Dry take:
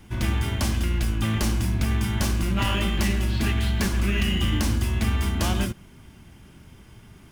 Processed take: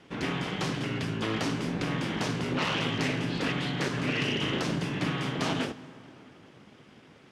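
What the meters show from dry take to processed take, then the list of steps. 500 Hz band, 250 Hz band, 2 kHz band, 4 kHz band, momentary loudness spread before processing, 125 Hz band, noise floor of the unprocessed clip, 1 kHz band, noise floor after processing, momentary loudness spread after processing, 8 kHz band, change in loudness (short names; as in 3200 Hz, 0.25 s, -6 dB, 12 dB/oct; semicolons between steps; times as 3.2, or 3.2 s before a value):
+1.0 dB, -3.5 dB, -1.0 dB, -2.0 dB, 2 LU, -9.0 dB, -49 dBFS, -1.0 dB, -55 dBFS, 4 LU, -9.0 dB, -5.5 dB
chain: full-wave rectifier; BPF 150–4700 Hz; plate-style reverb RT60 3.4 s, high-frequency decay 0.55×, DRR 15.5 dB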